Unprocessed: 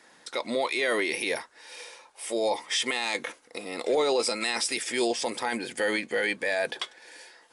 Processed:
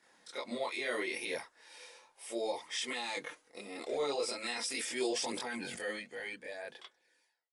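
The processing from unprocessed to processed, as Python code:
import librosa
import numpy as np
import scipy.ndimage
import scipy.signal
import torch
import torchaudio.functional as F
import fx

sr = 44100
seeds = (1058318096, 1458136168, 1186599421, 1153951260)

y = fx.fade_out_tail(x, sr, length_s=2.31)
y = fx.chorus_voices(y, sr, voices=2, hz=0.37, base_ms=25, depth_ms=4.6, mix_pct=60)
y = fx.sustainer(y, sr, db_per_s=25.0, at=(4.67, 5.91))
y = F.gain(torch.from_numpy(y), -6.5).numpy()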